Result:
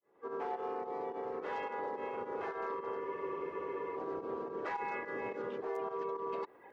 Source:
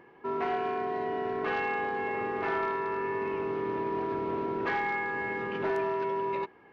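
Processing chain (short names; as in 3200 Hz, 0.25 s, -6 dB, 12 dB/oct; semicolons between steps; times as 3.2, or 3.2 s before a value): opening faded in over 1.87 s; reverb removal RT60 0.85 s; bell 2500 Hz -14.5 dB 2.2 oct; reverse; compressor 20:1, threshold -45 dBFS, peak gain reduction 16.5 dB; reverse; limiter -44.5 dBFS, peak gain reduction 9.5 dB; pump 107 bpm, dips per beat 2, -12 dB, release 95 ms; tone controls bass -12 dB, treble 0 dB; harmoniser +3 st -1 dB; spectral freeze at 3.06, 0.91 s; gain +12.5 dB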